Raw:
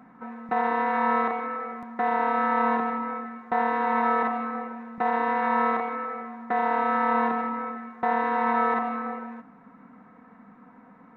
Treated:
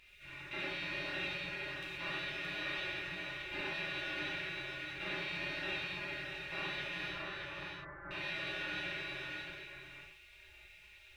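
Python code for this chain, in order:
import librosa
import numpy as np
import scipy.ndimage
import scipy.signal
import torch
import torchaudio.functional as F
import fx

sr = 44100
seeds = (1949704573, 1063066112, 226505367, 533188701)

p1 = fx.bin_compress(x, sr, power=0.6)
p2 = fx.bessel_lowpass(p1, sr, hz=620.0, order=4, at=(7.08, 8.11))
p3 = fx.spec_gate(p2, sr, threshold_db=-30, keep='weak')
p4 = p3 + fx.echo_single(p3, sr, ms=622, db=-5.0, dry=0)
p5 = fx.rev_gated(p4, sr, seeds[0], gate_ms=160, shape='flat', drr_db=-6.0)
y = F.gain(torch.from_numpy(p5), 2.0).numpy()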